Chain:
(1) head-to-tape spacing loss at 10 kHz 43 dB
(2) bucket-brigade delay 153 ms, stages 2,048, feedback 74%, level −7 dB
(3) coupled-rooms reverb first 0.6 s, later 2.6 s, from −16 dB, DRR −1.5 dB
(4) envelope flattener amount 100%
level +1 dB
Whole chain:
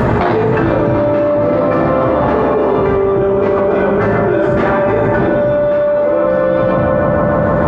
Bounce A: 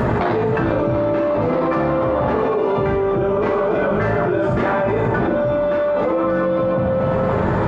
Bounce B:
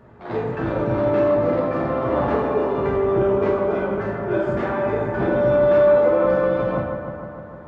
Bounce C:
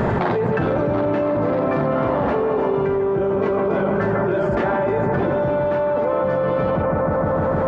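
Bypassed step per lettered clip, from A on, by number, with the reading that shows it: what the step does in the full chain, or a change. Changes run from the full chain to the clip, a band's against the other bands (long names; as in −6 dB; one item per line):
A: 2, change in integrated loudness −5.5 LU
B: 4, change in crest factor +2.5 dB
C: 3, change in integrated loudness −7.0 LU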